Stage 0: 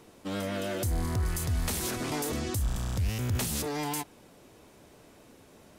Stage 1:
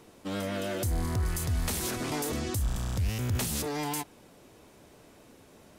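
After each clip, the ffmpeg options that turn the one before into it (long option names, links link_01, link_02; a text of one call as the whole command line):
ffmpeg -i in.wav -af anull out.wav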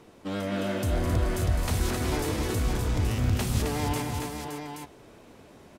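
ffmpeg -i in.wav -filter_complex "[0:a]highshelf=frequency=5500:gain=-9,asplit=2[link_01][link_02];[link_02]aecho=0:1:208|265|568|826:0.355|0.531|0.447|0.422[link_03];[link_01][link_03]amix=inputs=2:normalize=0,volume=2dB" out.wav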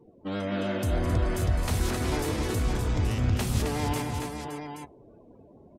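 ffmpeg -i in.wav -af "afftdn=noise_reduction=28:noise_floor=-49" out.wav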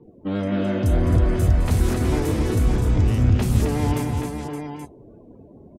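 ffmpeg -i in.wav -filter_complex "[0:a]acrossover=split=450[link_01][link_02];[link_01]acontrast=79[link_03];[link_03][link_02]amix=inputs=2:normalize=0,acrossover=split=4400[link_04][link_05];[link_05]adelay=30[link_06];[link_04][link_06]amix=inputs=2:normalize=0,volume=1.5dB" out.wav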